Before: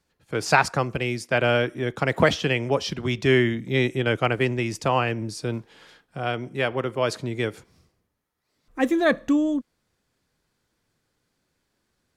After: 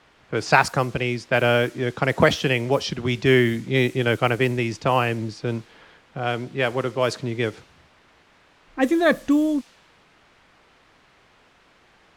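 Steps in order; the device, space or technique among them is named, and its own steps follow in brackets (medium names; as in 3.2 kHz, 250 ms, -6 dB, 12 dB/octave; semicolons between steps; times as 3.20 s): cassette deck with a dynamic noise filter (white noise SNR 24 dB; level-controlled noise filter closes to 2.1 kHz, open at -17 dBFS); trim +2 dB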